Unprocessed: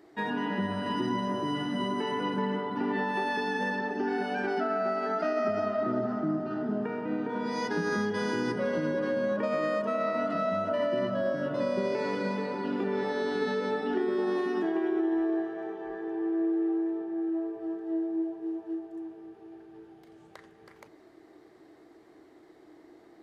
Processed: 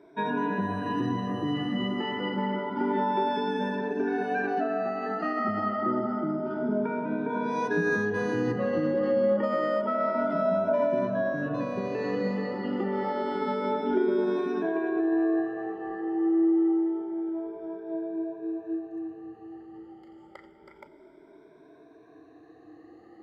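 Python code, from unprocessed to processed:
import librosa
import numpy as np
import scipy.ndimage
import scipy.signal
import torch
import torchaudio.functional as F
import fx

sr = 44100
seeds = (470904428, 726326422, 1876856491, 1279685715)

y = fx.spec_ripple(x, sr, per_octave=1.6, drift_hz=0.28, depth_db=18)
y = fx.lowpass(y, sr, hz=1900.0, slope=6)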